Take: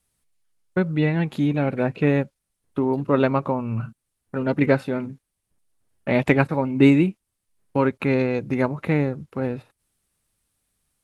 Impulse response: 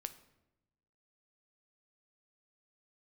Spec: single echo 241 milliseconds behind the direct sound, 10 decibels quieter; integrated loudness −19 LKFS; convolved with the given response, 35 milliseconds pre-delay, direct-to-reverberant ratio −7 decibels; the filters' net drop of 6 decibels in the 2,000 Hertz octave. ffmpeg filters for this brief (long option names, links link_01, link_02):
-filter_complex "[0:a]equalizer=frequency=2000:width_type=o:gain=-7.5,aecho=1:1:241:0.316,asplit=2[link_01][link_02];[1:a]atrim=start_sample=2205,adelay=35[link_03];[link_02][link_03]afir=irnorm=-1:irlink=0,volume=10dB[link_04];[link_01][link_04]amix=inputs=2:normalize=0,volume=-4.5dB"